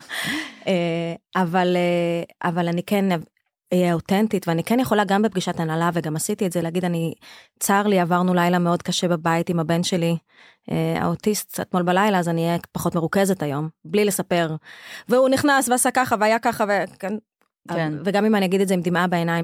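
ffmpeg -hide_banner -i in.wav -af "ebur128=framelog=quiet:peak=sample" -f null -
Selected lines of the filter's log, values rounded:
Integrated loudness:
  I:         -21.4 LUFS
  Threshold: -31.6 LUFS
Loudness range:
  LRA:         2.2 LU
  Threshold: -41.6 LUFS
  LRA low:   -22.6 LUFS
  LRA high:  -20.3 LUFS
Sample peak:
  Peak:       -6.1 dBFS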